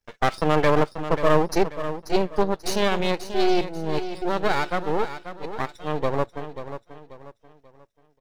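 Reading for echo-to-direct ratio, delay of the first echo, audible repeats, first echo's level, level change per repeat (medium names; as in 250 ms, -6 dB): -10.5 dB, 537 ms, 3, -11.0 dB, -9.0 dB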